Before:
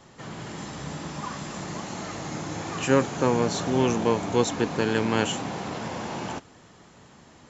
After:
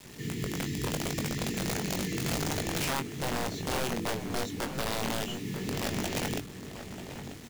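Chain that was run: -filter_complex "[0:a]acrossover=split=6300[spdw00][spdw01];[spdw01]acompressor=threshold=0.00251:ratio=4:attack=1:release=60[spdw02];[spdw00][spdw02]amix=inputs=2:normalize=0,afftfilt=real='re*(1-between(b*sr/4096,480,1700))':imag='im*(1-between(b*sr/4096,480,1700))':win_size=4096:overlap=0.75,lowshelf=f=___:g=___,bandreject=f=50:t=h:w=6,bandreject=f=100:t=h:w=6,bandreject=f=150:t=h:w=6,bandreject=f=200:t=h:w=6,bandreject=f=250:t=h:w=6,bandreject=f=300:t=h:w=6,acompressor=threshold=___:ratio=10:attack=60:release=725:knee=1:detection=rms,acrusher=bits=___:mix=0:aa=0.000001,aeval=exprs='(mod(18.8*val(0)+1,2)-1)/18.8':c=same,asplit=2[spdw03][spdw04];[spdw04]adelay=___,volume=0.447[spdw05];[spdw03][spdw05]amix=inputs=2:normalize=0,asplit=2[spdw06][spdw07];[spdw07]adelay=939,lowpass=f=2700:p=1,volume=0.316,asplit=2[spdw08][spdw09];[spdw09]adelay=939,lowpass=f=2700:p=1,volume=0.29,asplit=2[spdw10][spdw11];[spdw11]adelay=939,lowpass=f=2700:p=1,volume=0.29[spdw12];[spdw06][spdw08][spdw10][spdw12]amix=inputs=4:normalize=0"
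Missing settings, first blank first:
300, 7.5, 0.0398, 7, 21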